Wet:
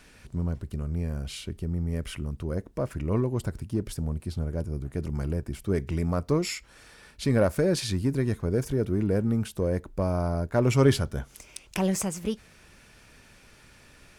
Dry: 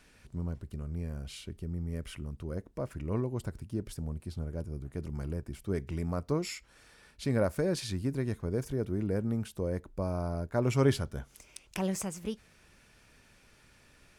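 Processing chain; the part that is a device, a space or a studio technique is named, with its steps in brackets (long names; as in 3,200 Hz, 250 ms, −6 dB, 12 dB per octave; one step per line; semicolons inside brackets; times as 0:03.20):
parallel distortion (in parallel at −10 dB: hard clipping −30 dBFS, distortion −7 dB)
on the sum: level +4.5 dB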